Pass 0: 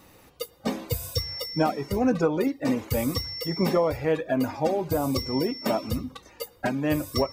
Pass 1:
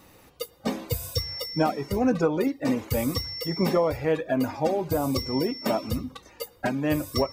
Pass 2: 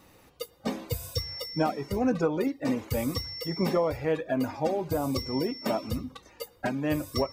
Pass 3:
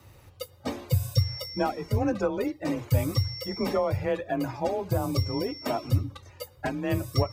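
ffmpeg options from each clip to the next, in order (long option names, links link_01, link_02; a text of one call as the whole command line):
ffmpeg -i in.wav -af anull out.wav
ffmpeg -i in.wav -af "highshelf=frequency=11000:gain=-3.5,volume=-3dB" out.wav
ffmpeg -i in.wav -af "lowshelf=frequency=110:width_type=q:width=1.5:gain=11.5,afreqshift=28" out.wav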